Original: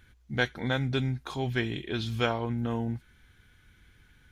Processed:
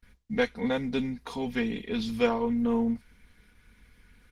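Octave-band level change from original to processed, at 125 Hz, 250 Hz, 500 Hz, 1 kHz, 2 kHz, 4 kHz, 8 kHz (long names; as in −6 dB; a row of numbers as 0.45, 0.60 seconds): −10.5 dB, +5.0 dB, +4.0 dB, +0.5 dB, −3.0 dB, −3.5 dB, can't be measured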